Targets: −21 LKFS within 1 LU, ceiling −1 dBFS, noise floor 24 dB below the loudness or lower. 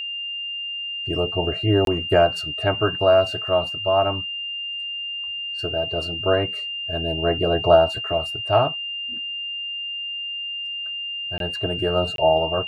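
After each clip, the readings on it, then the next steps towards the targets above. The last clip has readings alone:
number of dropouts 3; longest dropout 22 ms; interfering tone 2,800 Hz; level of the tone −27 dBFS; integrated loudness −22.5 LKFS; sample peak −3.5 dBFS; target loudness −21.0 LKFS
→ repair the gap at 0:01.85/0:11.38/0:12.16, 22 ms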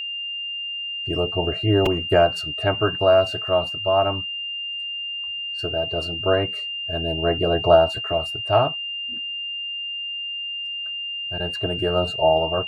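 number of dropouts 0; interfering tone 2,800 Hz; level of the tone −27 dBFS
→ notch filter 2,800 Hz, Q 30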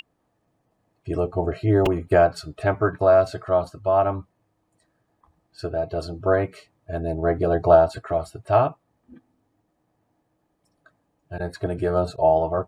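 interfering tone none found; integrated loudness −22.0 LKFS; sample peak −3.5 dBFS; target loudness −21.0 LKFS
→ level +1 dB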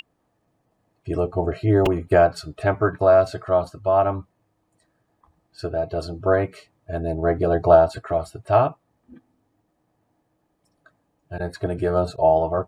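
integrated loudness −21.0 LKFS; sample peak −2.5 dBFS; background noise floor −71 dBFS

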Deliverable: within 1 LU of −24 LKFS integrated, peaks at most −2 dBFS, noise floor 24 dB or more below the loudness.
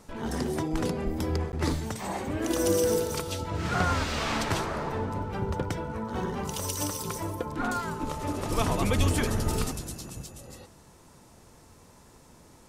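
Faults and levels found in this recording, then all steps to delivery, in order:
number of dropouts 1; longest dropout 9.9 ms; integrated loudness −30.0 LKFS; sample peak −11.5 dBFS; target loudness −24.0 LKFS
→ repair the gap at 0:01.52, 9.9 ms
level +6 dB

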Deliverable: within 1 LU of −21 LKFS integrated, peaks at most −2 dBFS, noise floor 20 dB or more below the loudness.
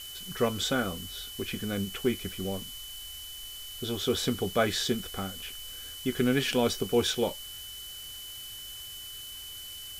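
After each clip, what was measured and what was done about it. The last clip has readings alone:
interfering tone 3,000 Hz; level of the tone −42 dBFS; background noise floor −43 dBFS; target noise floor −52 dBFS; integrated loudness −31.5 LKFS; sample peak −12.5 dBFS; target loudness −21.0 LKFS
→ notch filter 3,000 Hz, Q 30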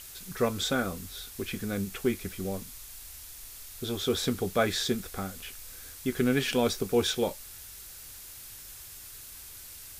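interfering tone none found; background noise floor −46 dBFS; target noise floor −51 dBFS
→ broadband denoise 6 dB, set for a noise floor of −46 dBFS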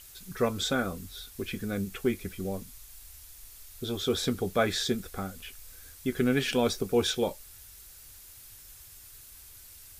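background noise floor −51 dBFS; integrated loudness −30.5 LKFS; sample peak −12.5 dBFS; target loudness −21.0 LKFS
→ level +9.5 dB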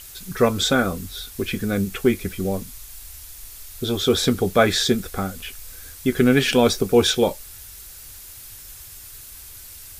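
integrated loudness −21.0 LKFS; sample peak −3.0 dBFS; background noise floor −41 dBFS

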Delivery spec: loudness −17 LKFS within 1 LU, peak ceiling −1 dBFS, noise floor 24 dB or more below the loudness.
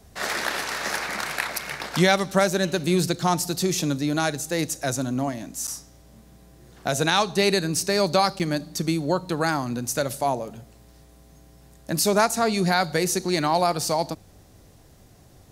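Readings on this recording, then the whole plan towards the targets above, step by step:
number of dropouts 2; longest dropout 7.8 ms; integrated loudness −24.0 LKFS; sample peak −3.0 dBFS; target loudness −17.0 LKFS
→ repair the gap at 0:05.67/0:08.39, 7.8 ms
level +7 dB
brickwall limiter −1 dBFS

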